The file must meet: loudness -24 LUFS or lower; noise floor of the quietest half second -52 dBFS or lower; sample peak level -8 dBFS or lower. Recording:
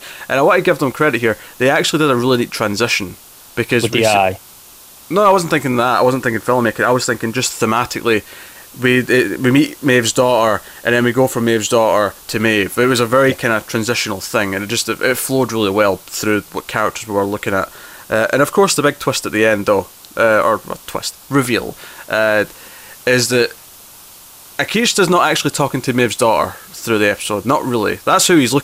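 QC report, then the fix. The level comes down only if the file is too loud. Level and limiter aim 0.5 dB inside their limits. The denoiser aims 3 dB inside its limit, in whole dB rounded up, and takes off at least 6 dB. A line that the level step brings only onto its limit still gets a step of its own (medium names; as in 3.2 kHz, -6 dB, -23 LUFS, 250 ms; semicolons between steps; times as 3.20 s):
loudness -15.0 LUFS: fail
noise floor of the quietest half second -41 dBFS: fail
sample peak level -2.0 dBFS: fail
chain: noise reduction 6 dB, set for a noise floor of -41 dBFS; trim -9.5 dB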